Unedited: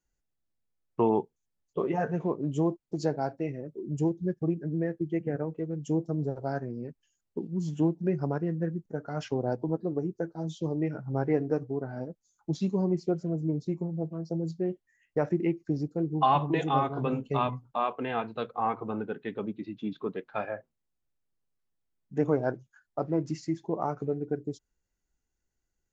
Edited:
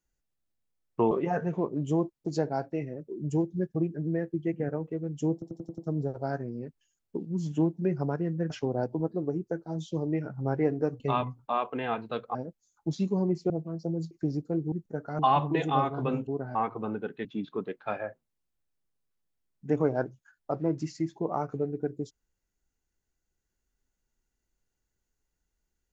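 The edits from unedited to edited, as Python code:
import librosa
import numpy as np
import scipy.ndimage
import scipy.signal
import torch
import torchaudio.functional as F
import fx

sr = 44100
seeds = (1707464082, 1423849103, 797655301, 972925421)

y = fx.edit(x, sr, fx.cut(start_s=1.11, length_s=0.67),
    fx.stutter(start_s=6.0, slice_s=0.09, count=6),
    fx.move(start_s=8.72, length_s=0.47, to_s=16.18),
    fx.swap(start_s=11.69, length_s=0.28, other_s=17.26, other_length_s=1.35),
    fx.cut(start_s=13.12, length_s=0.84),
    fx.cut(start_s=14.57, length_s=1.0),
    fx.cut(start_s=19.31, length_s=0.42), tone=tone)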